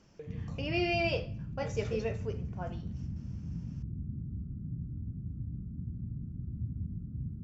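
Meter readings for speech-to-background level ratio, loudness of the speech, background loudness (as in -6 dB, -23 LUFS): 5.0 dB, -35.5 LUFS, -40.5 LUFS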